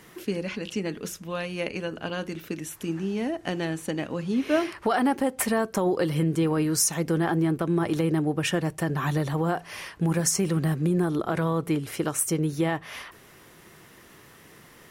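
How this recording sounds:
background noise floor −52 dBFS
spectral slope −5.0 dB per octave

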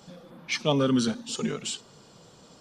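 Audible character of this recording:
background noise floor −54 dBFS
spectral slope −4.5 dB per octave

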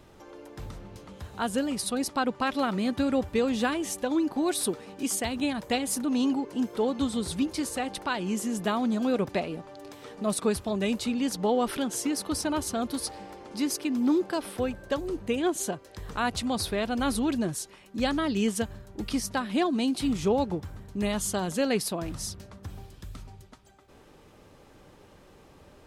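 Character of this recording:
background noise floor −55 dBFS
spectral slope −4.0 dB per octave

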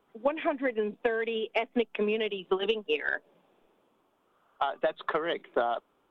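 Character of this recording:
background noise floor −71 dBFS
spectral slope −1.5 dB per octave

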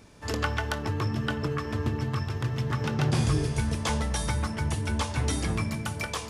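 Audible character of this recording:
background noise floor −38 dBFS
spectral slope −5.5 dB per octave

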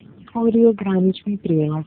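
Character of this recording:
phaser sweep stages 8, 2.1 Hz, lowest notch 430–3,000 Hz
a quantiser's noise floor 10 bits, dither none
AMR narrowband

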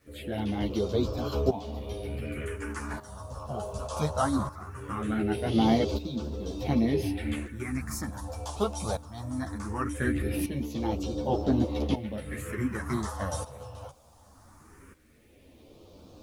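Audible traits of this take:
tremolo saw up 0.67 Hz, depth 80%
phaser sweep stages 4, 0.2 Hz, lowest notch 320–1,900 Hz
a quantiser's noise floor 12 bits, dither none
a shimmering, thickened sound

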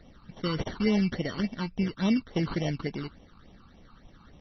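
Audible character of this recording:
aliases and images of a low sample rate 2,500 Hz, jitter 0%
phaser sweep stages 12, 3.5 Hz, lowest notch 570–1,500 Hz
MP3

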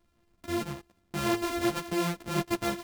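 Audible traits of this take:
a buzz of ramps at a fixed pitch in blocks of 128 samples
a shimmering, thickened sound

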